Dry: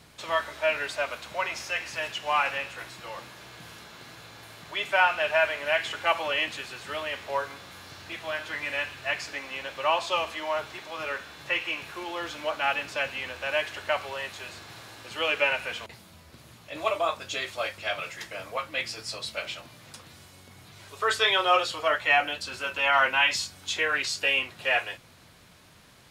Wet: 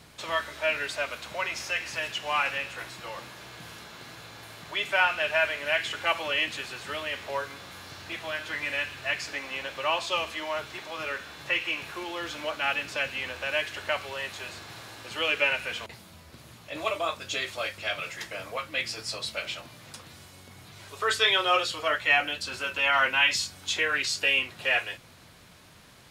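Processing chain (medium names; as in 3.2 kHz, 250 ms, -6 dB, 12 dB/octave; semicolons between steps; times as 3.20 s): dynamic bell 810 Hz, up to -6 dB, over -39 dBFS, Q 0.96; trim +1.5 dB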